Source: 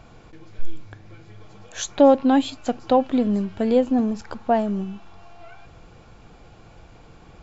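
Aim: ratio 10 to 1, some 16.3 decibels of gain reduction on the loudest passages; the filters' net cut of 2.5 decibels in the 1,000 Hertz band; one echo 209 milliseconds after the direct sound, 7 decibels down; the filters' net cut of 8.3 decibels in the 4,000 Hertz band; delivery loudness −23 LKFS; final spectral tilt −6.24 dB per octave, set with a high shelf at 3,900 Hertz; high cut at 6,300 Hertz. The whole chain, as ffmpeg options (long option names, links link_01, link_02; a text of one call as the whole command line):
ffmpeg -i in.wav -af "lowpass=6300,equalizer=frequency=1000:width_type=o:gain=-3,highshelf=frequency=3900:gain=-8,equalizer=frequency=4000:width_type=o:gain=-5.5,acompressor=threshold=-27dB:ratio=10,aecho=1:1:209:0.447,volume=9.5dB" out.wav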